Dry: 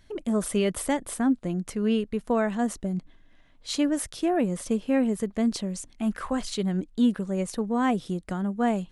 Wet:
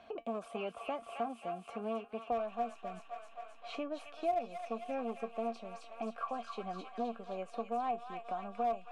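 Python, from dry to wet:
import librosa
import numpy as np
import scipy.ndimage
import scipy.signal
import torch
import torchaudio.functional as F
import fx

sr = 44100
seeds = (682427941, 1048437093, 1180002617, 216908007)

p1 = fx.high_shelf(x, sr, hz=4300.0, db=-4.0)
p2 = fx.comb_fb(p1, sr, f0_hz=230.0, decay_s=0.16, harmonics='all', damping=0.0, mix_pct=80)
p3 = fx.clip_asym(p2, sr, top_db=-31.5, bottom_db=-21.5)
p4 = fx.vowel_filter(p3, sr, vowel='a')
p5 = fx.backlash(p4, sr, play_db=-28.5)
p6 = p4 + F.gain(torch.from_numpy(p5), -7.0).numpy()
p7 = fx.echo_wet_highpass(p6, sr, ms=264, feedback_pct=52, hz=1400.0, wet_db=-4.0)
p8 = fx.band_squash(p7, sr, depth_pct=70)
y = F.gain(torch.from_numpy(p8), 10.0).numpy()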